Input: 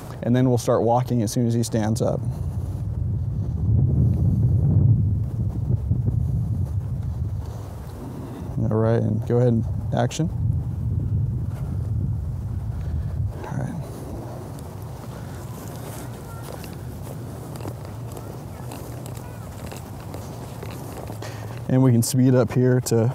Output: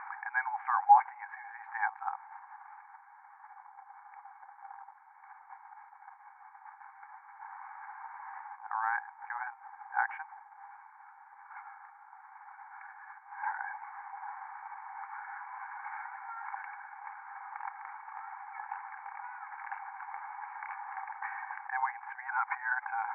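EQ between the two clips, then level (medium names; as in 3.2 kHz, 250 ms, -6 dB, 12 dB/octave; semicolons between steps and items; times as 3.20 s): brick-wall FIR high-pass 770 Hz; rippled Chebyshev low-pass 2.3 kHz, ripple 9 dB; tilt shelf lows +3.5 dB, about 1.2 kHz; +9.0 dB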